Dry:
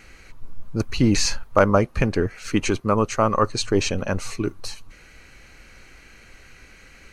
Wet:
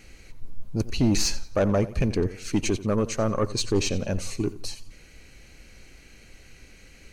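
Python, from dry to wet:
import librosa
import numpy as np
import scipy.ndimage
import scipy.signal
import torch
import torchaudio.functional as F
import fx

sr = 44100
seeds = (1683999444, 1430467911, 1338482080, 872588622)

y = fx.peak_eq(x, sr, hz=1300.0, db=-10.0, octaves=1.5)
y = 10.0 ** (-14.5 / 20.0) * np.tanh(y / 10.0 ** (-14.5 / 20.0))
y = fx.echo_warbled(y, sr, ms=88, feedback_pct=35, rate_hz=2.8, cents=81, wet_db=-16.5)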